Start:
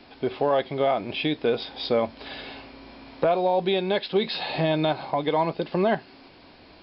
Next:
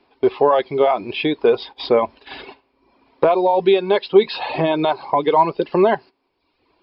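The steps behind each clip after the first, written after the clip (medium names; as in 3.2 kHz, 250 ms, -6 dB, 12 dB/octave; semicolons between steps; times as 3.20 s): gate -38 dBFS, range -16 dB; reverb removal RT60 0.84 s; fifteen-band graphic EQ 400 Hz +10 dB, 1 kHz +10 dB, 2.5 kHz +4 dB; trim +1.5 dB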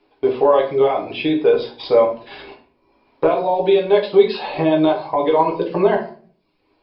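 reverberation RT60 0.45 s, pre-delay 6 ms, DRR -0.5 dB; trim -4.5 dB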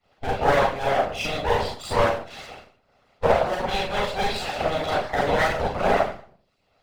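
comb filter that takes the minimum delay 1.5 ms; Schroeder reverb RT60 0.38 s, combs from 30 ms, DRR -4.5 dB; harmonic-percussive split harmonic -18 dB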